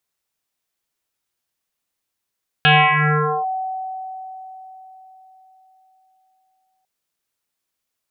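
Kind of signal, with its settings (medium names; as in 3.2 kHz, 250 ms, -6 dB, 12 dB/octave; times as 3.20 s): FM tone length 4.20 s, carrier 755 Hz, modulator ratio 0.4, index 8.2, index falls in 0.80 s linear, decay 4.28 s, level -8.5 dB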